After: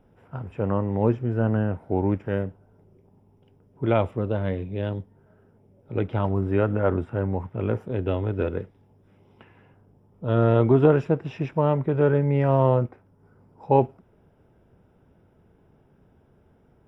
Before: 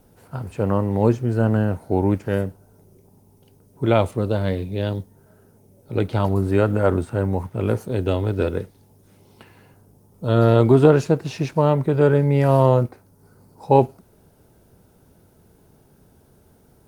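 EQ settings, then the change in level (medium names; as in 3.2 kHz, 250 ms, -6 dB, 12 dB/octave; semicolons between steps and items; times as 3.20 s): Savitzky-Golay filter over 25 samples; -4.0 dB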